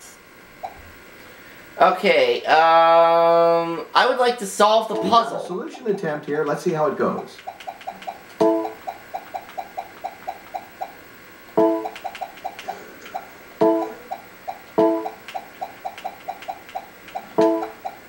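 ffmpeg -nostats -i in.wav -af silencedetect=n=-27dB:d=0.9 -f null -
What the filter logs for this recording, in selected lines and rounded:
silence_start: 0.66
silence_end: 1.77 | silence_duration: 1.11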